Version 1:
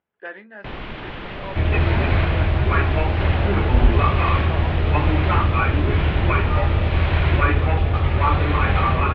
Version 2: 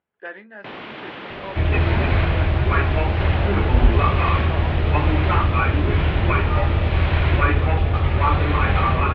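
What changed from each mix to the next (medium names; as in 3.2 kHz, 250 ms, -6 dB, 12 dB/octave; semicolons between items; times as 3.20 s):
first sound: add high-pass 210 Hz 12 dB/octave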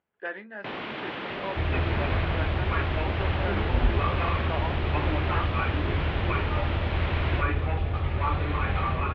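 second sound -8.5 dB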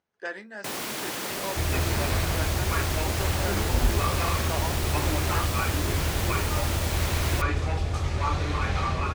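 master: remove steep low-pass 3.3 kHz 36 dB/octave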